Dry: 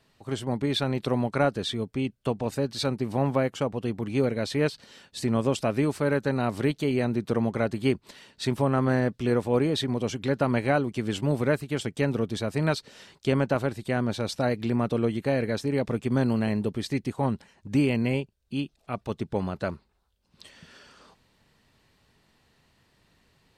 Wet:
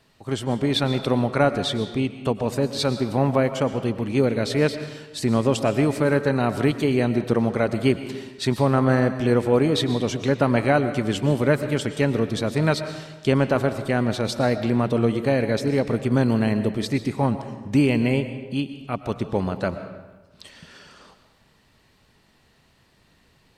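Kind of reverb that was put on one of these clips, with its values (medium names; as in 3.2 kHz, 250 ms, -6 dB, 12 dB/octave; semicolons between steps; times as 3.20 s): algorithmic reverb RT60 1.2 s, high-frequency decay 0.75×, pre-delay 80 ms, DRR 10 dB; trim +4.5 dB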